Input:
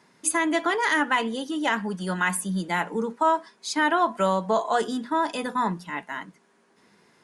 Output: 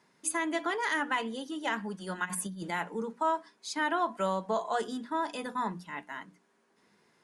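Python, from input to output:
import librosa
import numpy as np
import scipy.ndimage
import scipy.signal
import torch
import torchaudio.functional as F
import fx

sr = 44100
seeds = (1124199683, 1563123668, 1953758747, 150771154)

y = fx.over_compress(x, sr, threshold_db=-30.0, ratio=-0.5, at=(2.24, 2.7), fade=0.02)
y = fx.hum_notches(y, sr, base_hz=60, count=5)
y = y * 10.0 ** (-7.5 / 20.0)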